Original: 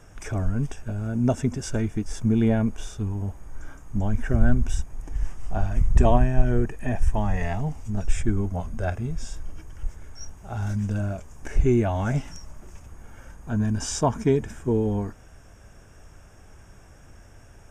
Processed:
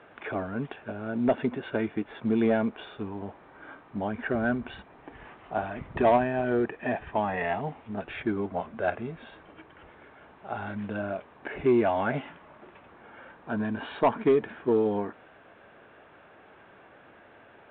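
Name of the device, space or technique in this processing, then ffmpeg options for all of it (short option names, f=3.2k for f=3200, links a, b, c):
telephone: -af "highpass=330,lowpass=3.2k,asoftclip=type=tanh:threshold=-17dB,volume=4dB" -ar 8000 -c:a pcm_alaw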